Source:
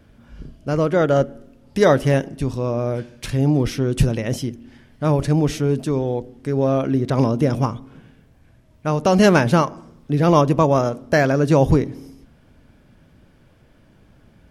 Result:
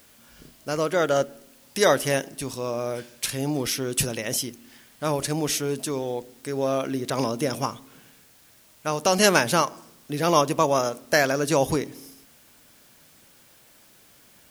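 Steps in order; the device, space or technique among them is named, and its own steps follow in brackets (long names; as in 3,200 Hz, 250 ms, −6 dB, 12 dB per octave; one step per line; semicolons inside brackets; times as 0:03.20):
turntable without a phono preamp (RIAA equalisation recording; white noise bed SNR 30 dB)
level −2.5 dB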